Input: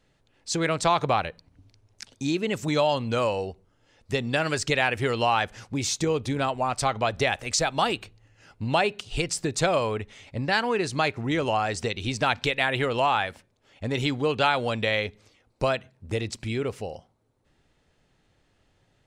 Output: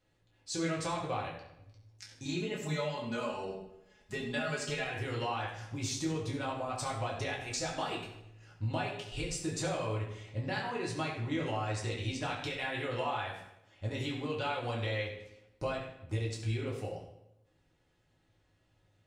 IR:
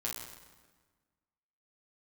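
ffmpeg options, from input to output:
-filter_complex "[0:a]asettb=1/sr,asplit=3[link_01][link_02][link_03];[link_01]atrim=end=2.254[link_04];[link_02]atrim=start=2.25:end=4.84,asetpts=PTS-STARTPTS,afade=type=in:duration=0.004:curve=qsin,afade=type=out:start_time=2.586:duration=0.004:curve=qsin,aecho=1:1:4.8:0.89,atrim=end_sample=114219[link_05];[link_03]atrim=start=4.836[link_06];[link_04][link_05]acrossfade=duration=0.004:curve1=hsin:curve2=qsin[link_07];[link_07][link_06]acrossfade=duration=0.004:curve1=qsin:curve2=hsin,acompressor=threshold=-25dB:ratio=6[link_08];[1:a]atrim=start_sample=2205,asetrate=79380,aresample=44100[link_09];[link_08][link_09]afir=irnorm=-1:irlink=0,volume=-3.5dB"

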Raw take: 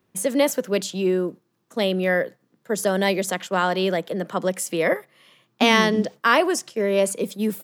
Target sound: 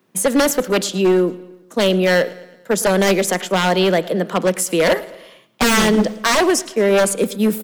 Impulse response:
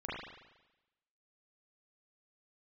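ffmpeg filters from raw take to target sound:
-filter_complex "[0:a]highpass=frequency=140:width=0.5412,highpass=frequency=140:width=1.3066,aeval=exprs='0.158*(abs(mod(val(0)/0.158+3,4)-2)-1)':channel_layout=same,aecho=1:1:111|222|333|444:0.0944|0.0491|0.0255|0.0133,asplit=2[link_01][link_02];[1:a]atrim=start_sample=2205,asetrate=57330,aresample=44100[link_03];[link_02][link_03]afir=irnorm=-1:irlink=0,volume=-20.5dB[link_04];[link_01][link_04]amix=inputs=2:normalize=0,volume=7dB"

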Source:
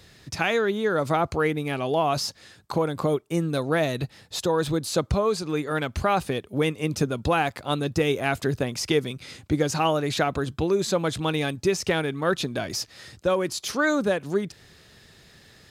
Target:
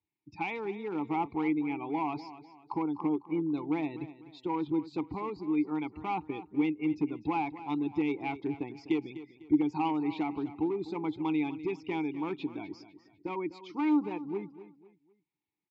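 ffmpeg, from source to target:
ffmpeg -i in.wav -filter_complex "[0:a]afftdn=noise_reduction=29:noise_floor=-34,equalizer=frequency=250:width_type=o:width=0.33:gain=-10,equalizer=frequency=1000:width_type=o:width=0.33:gain=3,equalizer=frequency=6300:width_type=o:width=0.33:gain=-11,aresample=16000,volume=18.5dB,asoftclip=hard,volume=-18.5dB,aresample=44100,asplit=3[link_01][link_02][link_03];[link_01]bandpass=frequency=300:width_type=q:width=8,volume=0dB[link_04];[link_02]bandpass=frequency=870:width_type=q:width=8,volume=-6dB[link_05];[link_03]bandpass=frequency=2240:width_type=q:width=8,volume=-9dB[link_06];[link_04][link_05][link_06]amix=inputs=3:normalize=0,aecho=1:1:250|500|750:0.188|0.0659|0.0231,volume=5.5dB" out.wav

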